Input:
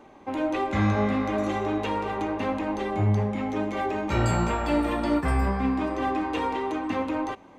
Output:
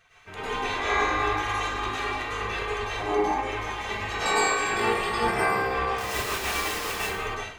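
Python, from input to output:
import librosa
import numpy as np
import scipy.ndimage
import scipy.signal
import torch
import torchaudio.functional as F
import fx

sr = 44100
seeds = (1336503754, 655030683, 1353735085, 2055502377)

y = fx.spec_gate(x, sr, threshold_db=-15, keep='weak')
y = y + 0.4 * np.pad(y, (int(2.6 * sr / 1000.0), 0))[:len(y)]
y = fx.quant_dither(y, sr, seeds[0], bits=6, dither='none', at=(5.98, 6.96))
y = fx.rev_plate(y, sr, seeds[1], rt60_s=0.65, hf_ratio=0.95, predelay_ms=90, drr_db=-8.0)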